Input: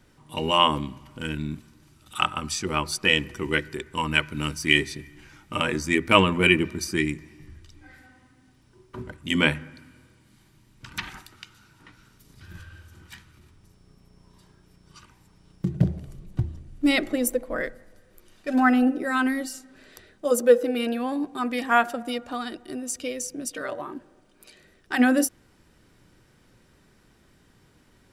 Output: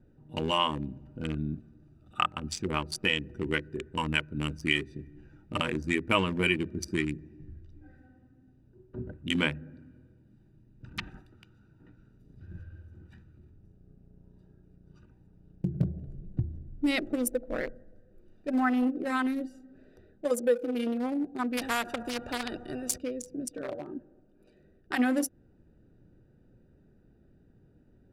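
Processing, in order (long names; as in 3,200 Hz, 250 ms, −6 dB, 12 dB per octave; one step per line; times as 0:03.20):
adaptive Wiener filter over 41 samples
0:01.19–0:02.26: hollow resonant body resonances 690/1,200 Hz, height 10 dB
downward compressor 2 to 1, threshold −28 dBFS, peak gain reduction 9.5 dB
0:21.57–0:22.98: every bin compressed towards the loudest bin 2 to 1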